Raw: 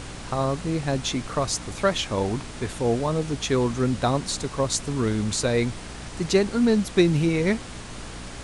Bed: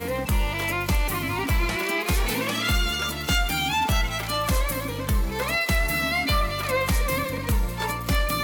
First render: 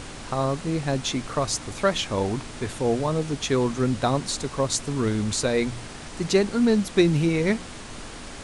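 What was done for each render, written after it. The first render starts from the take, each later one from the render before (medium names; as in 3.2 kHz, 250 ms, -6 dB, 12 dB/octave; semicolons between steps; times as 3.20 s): de-hum 60 Hz, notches 3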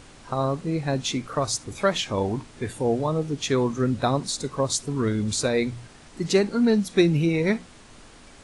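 noise print and reduce 10 dB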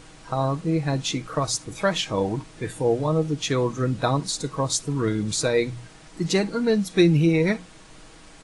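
comb 6.3 ms, depth 49%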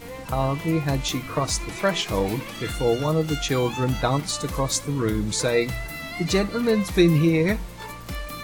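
add bed -9.5 dB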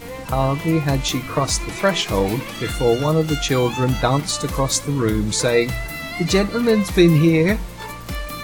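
trim +4.5 dB; peak limiter -3 dBFS, peak gain reduction 1 dB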